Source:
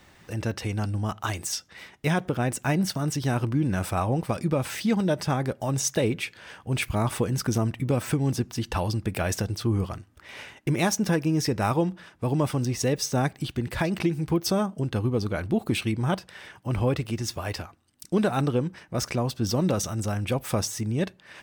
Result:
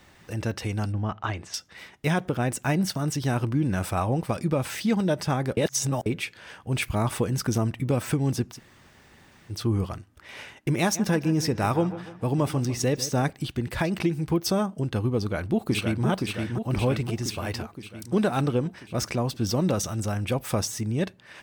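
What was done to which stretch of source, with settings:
0.92–1.54 s: low-pass 2.8 kHz
5.57–6.06 s: reverse
8.55–9.51 s: room tone, crossfade 0.10 s
10.80–13.30 s: feedback echo behind a low-pass 147 ms, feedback 48%, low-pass 2.9 kHz, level -14.5 dB
15.18–16.06 s: echo throw 520 ms, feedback 65%, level -4 dB

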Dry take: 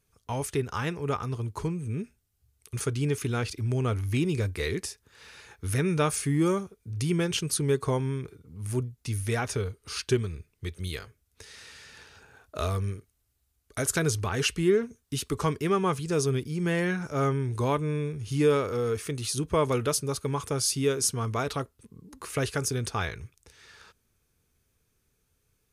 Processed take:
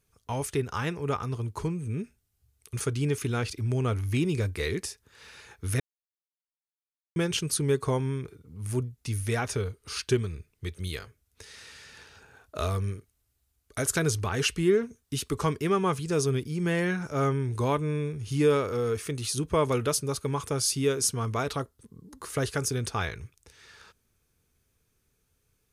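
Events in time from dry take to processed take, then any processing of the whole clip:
5.80–7.16 s: mute
21.56–22.53 s: peaking EQ 2.5 kHz -7.5 dB 0.39 oct

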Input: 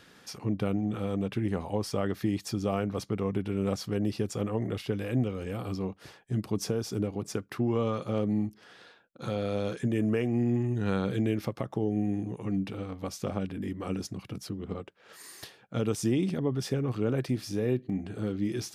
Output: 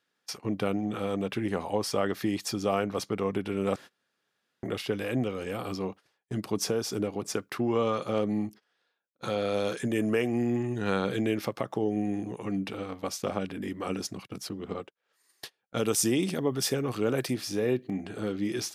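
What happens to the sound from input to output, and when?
3.76–4.63 s: room tone
9.54–10.47 s: treble shelf 8.6 kHz +7 dB
15.77–17.34 s: treble shelf 6.8 kHz +11 dB
whole clip: high-pass 94 Hz 6 dB/octave; gate -43 dBFS, range -27 dB; bass shelf 250 Hz -10.5 dB; trim +5.5 dB

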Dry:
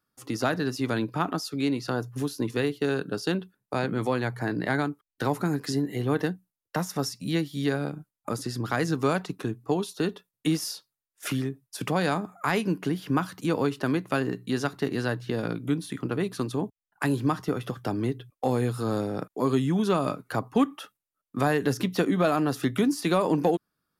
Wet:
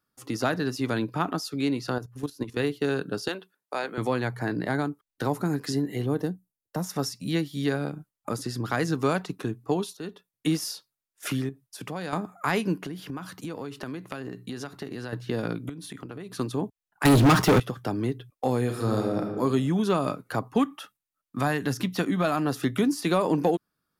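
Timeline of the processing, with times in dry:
1.98–2.60 s: level held to a coarse grid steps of 13 dB
3.28–3.98 s: high-pass 490 Hz
4.59–5.50 s: dynamic bell 2.4 kHz, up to -5 dB, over -42 dBFS, Q 0.76
6.06–6.84 s: peaking EQ 2.2 kHz -12.5 dB 2.2 oct
9.97–10.48 s: fade in, from -13 dB
11.49–12.13 s: compression 1.5:1, threshold -45 dBFS
12.80–15.13 s: compression 8:1, threshold -31 dBFS
15.69–16.39 s: compression 16:1, threshold -34 dBFS
17.05–17.60 s: waveshaping leveller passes 5
18.62–19.32 s: reverb throw, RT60 1.3 s, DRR 2.5 dB
20.59–22.45 s: peaking EQ 440 Hz -6.5 dB

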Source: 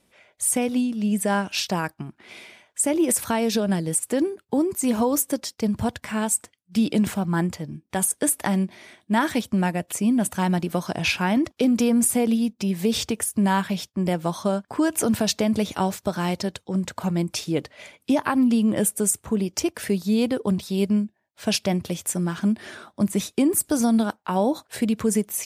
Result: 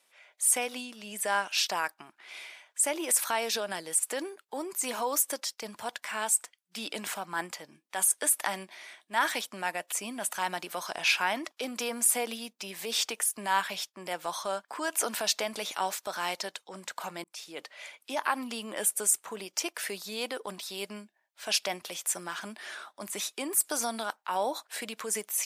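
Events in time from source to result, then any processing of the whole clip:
17.24–17.75 s: fade in
whole clip: high-pass 830 Hz 12 dB/octave; transient shaper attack -4 dB, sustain +1 dB

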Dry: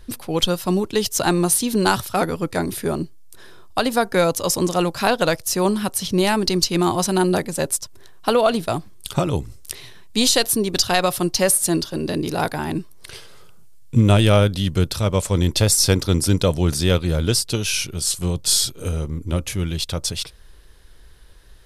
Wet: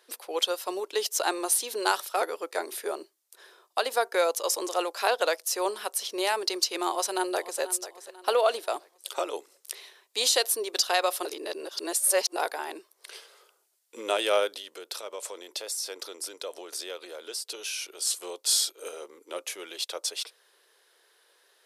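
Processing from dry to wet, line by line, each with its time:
6.92–7.61 s: echo throw 490 ms, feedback 40%, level -14 dB
11.25–12.36 s: reverse
14.56–18.00 s: compression, threshold -23 dBFS
whole clip: steep high-pass 400 Hz 36 dB/octave; trim -6 dB

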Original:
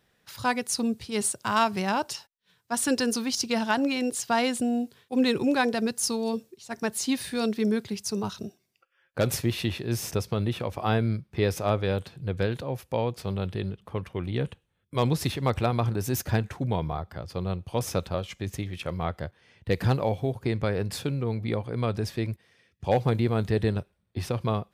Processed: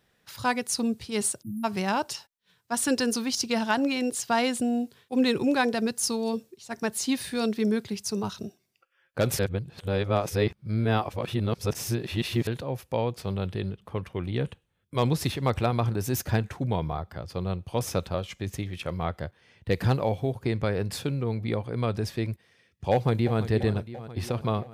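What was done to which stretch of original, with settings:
1.42–1.64 s: spectral selection erased 330–9200 Hz
9.39–12.47 s: reverse
22.92–23.39 s: echo throw 340 ms, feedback 70%, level -12.5 dB

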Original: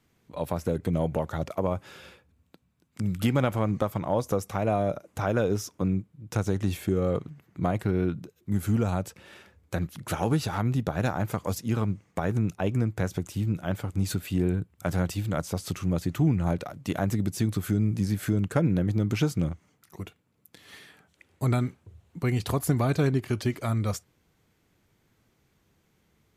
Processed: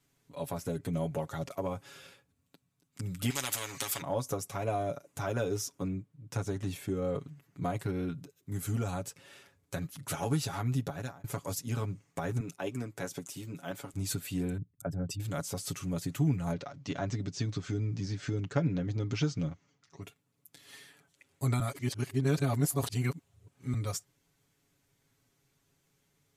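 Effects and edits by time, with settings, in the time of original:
3.30–4.02 s: spectrum-flattening compressor 4:1
5.88–7.19 s: treble shelf 4.1 kHz -6.5 dB
10.82–11.24 s: fade out
12.40–13.94 s: high-pass 200 Hz
14.57–15.20 s: resonances exaggerated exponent 2
16.52–20.03 s: steep low-pass 6.3 kHz
21.60–23.74 s: reverse
whole clip: peaking EQ 8.7 kHz +8.5 dB 2 oct; comb 7.2 ms, depth 73%; trim -8.5 dB

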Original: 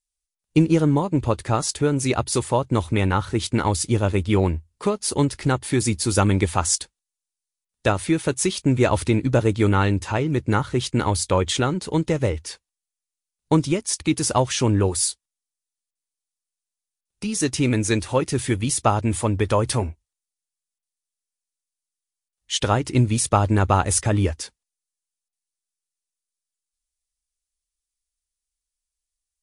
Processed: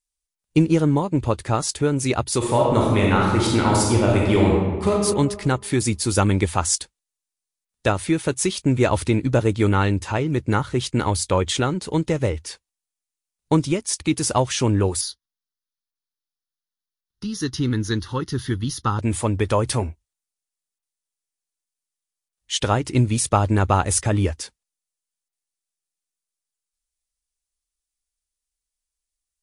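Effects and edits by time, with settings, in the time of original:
2.37–4.92 s: reverb throw, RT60 1.4 s, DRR -2.5 dB
15.01–18.99 s: static phaser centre 2.4 kHz, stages 6

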